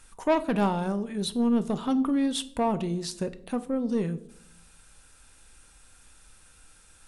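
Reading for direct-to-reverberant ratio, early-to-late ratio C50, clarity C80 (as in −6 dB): 11.0 dB, 17.5 dB, 20.0 dB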